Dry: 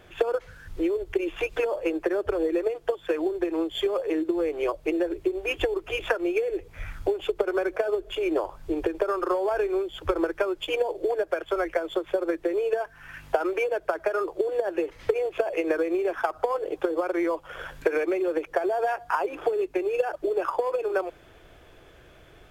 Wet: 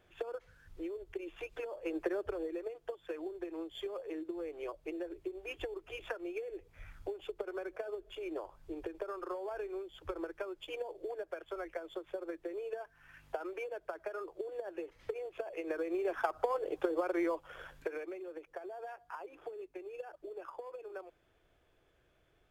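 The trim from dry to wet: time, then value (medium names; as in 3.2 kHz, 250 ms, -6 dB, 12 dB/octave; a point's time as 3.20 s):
1.79 s -15.5 dB
1.98 s -7.5 dB
2.56 s -15 dB
15.52 s -15 dB
16.15 s -7 dB
17.25 s -7 dB
18.25 s -19.5 dB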